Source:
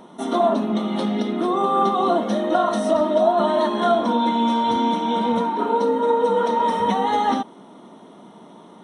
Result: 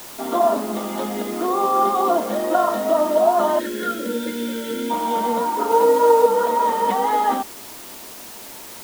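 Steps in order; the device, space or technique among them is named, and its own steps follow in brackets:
wax cylinder (band-pass filter 330–2,400 Hz; tape wow and flutter 20 cents; white noise bed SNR 18 dB)
0:03.59–0:04.90: gain on a spectral selection 600–1,300 Hz −25 dB
0:05.70–0:06.26: comb filter 6.3 ms, depth 85%
level +1.5 dB

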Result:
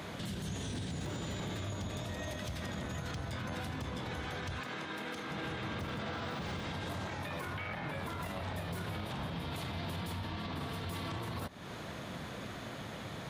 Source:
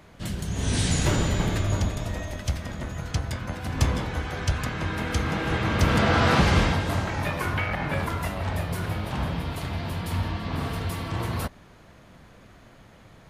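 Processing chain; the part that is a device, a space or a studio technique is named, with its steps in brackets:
broadcast voice chain (high-pass filter 99 Hz 12 dB per octave; de-essing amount 80%; downward compressor 5 to 1, threshold −41 dBFS, peak gain reduction 21.5 dB; parametric band 3,600 Hz +5.5 dB 0.32 octaves; brickwall limiter −39.5 dBFS, peak gain reduction 10 dB)
0:04.60–0:05.31: high-pass filter 220 Hz 12 dB per octave
level +8.5 dB

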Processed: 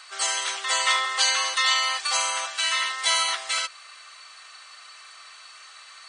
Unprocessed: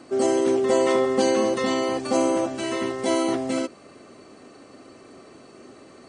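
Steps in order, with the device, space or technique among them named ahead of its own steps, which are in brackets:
headphones lying on a table (high-pass filter 1,200 Hz 24 dB per octave; parametric band 3,700 Hz +6.5 dB 0.58 octaves)
level +8.5 dB

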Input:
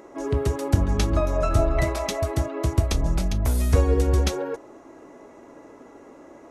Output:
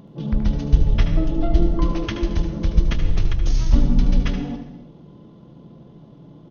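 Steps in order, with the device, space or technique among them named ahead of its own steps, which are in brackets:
monster voice (pitch shifter −11.5 semitones; low-shelf EQ 170 Hz +7 dB; single-tap delay 76 ms −10 dB; convolution reverb RT60 1.0 s, pre-delay 84 ms, DRR 9.5 dB)
level −1 dB

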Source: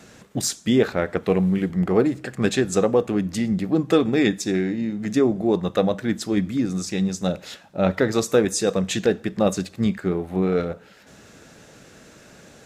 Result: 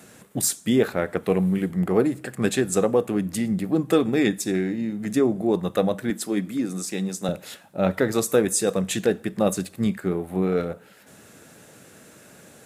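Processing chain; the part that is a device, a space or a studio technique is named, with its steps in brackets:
budget condenser microphone (high-pass filter 87 Hz; high shelf with overshoot 7,700 Hz +9 dB, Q 1.5)
0:06.10–0:07.29: high-pass filter 200 Hz 12 dB per octave
level −1.5 dB

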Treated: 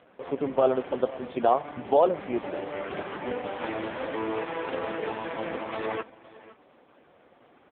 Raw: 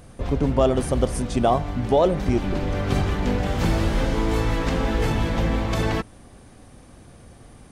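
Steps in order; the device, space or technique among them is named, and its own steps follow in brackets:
satellite phone (band-pass filter 390–3,300 Hz; single-tap delay 511 ms −19 dB; AMR narrowband 4.75 kbit/s 8,000 Hz)

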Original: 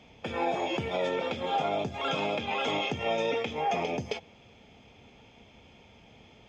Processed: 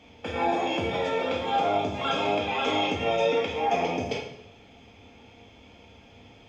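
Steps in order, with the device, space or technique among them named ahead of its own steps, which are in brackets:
bathroom (convolution reverb RT60 0.80 s, pre-delay 3 ms, DRR −1 dB)

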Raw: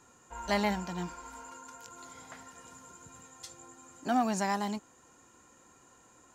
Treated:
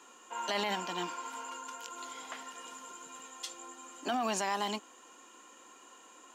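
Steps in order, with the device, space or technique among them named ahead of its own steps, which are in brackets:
laptop speaker (high-pass filter 260 Hz 24 dB per octave; parametric band 1,100 Hz +6 dB 0.21 octaves; parametric band 3,000 Hz +10 dB 0.59 octaves; brickwall limiter −26 dBFS, peak gain reduction 12 dB)
level +3 dB

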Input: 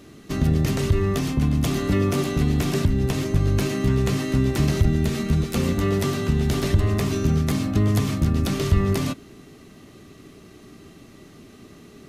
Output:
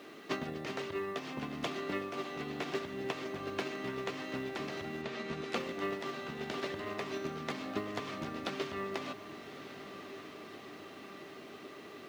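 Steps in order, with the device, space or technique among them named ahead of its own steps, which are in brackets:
baby monitor (band-pass filter 460–3,500 Hz; downward compressor 10 to 1, threshold −40 dBFS, peak gain reduction 15.5 dB; white noise bed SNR 29 dB; noise gate −41 dBFS, range −9 dB)
0:05.01–0:05.54: low-pass filter 4,700 Hz → 12,000 Hz
feedback delay with all-pass diffusion 1,192 ms, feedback 62%, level −12 dB
level +11 dB

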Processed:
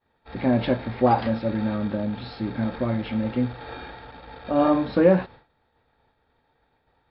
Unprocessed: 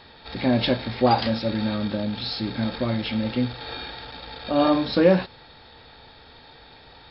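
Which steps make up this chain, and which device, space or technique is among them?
hearing-loss simulation (low-pass filter 1,900 Hz 12 dB per octave; downward expander −38 dBFS)

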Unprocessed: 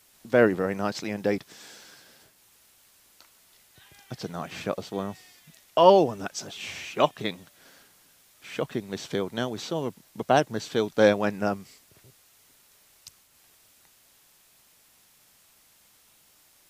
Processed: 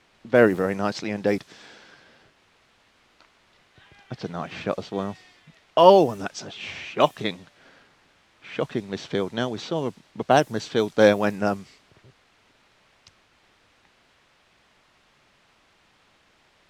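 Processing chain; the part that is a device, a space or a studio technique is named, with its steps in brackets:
cassette deck with a dynamic noise filter (white noise bed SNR 30 dB; low-pass that shuts in the quiet parts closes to 2,800 Hz, open at −19 dBFS)
level +3 dB

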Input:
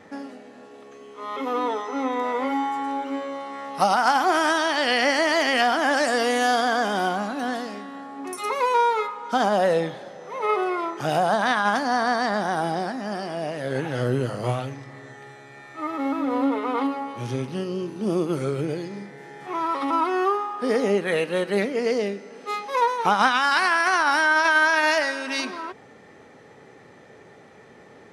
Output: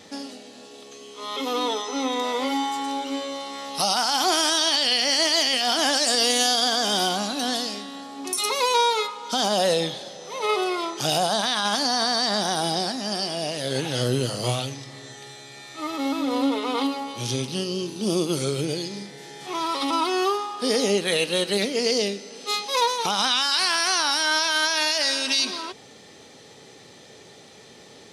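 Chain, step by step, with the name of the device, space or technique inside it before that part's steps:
over-bright horn tweeter (high shelf with overshoot 2,600 Hz +13 dB, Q 1.5; brickwall limiter −11 dBFS, peak gain reduction 11 dB)

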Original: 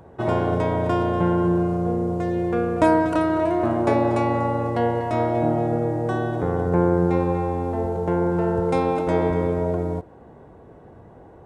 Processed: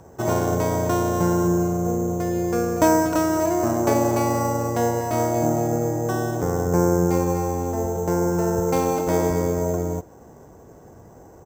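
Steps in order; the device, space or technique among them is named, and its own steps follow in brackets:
crushed at another speed (tape speed factor 0.8×; decimation without filtering 8×; tape speed factor 1.25×)

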